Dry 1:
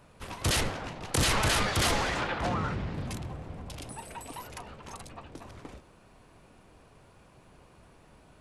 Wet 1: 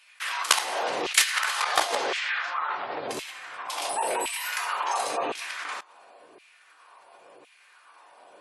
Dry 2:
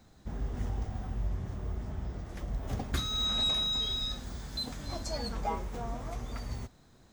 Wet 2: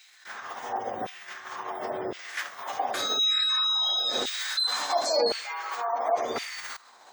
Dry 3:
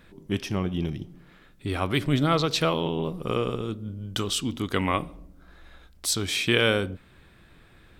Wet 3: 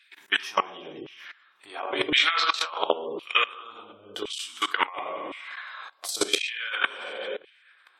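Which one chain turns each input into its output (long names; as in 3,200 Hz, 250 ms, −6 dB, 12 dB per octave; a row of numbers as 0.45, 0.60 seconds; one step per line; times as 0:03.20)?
coupled-rooms reverb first 0.55 s, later 2.2 s, from −18 dB, DRR −1 dB
gain into a clipping stage and back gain 11.5 dB
output level in coarse steps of 23 dB
auto-filter high-pass saw down 0.94 Hz 400–2,600 Hz
compressor whose output falls as the input rises −30 dBFS, ratio −0.5
gate on every frequency bin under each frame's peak −30 dB strong
loudness normalisation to −27 LKFS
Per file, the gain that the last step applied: +10.0, +20.5, +6.0 decibels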